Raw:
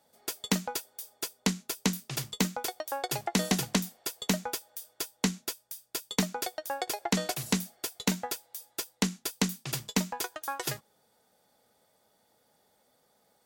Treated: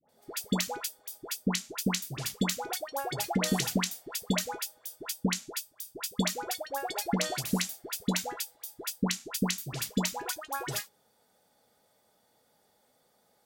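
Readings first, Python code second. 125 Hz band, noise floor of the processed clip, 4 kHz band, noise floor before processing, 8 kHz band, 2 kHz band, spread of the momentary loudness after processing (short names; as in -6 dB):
0.0 dB, -70 dBFS, 0.0 dB, -70 dBFS, 0.0 dB, 0.0 dB, 8 LU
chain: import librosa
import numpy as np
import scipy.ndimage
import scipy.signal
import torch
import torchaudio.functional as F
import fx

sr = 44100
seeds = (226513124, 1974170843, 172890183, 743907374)

y = fx.dispersion(x, sr, late='highs', ms=91.0, hz=980.0)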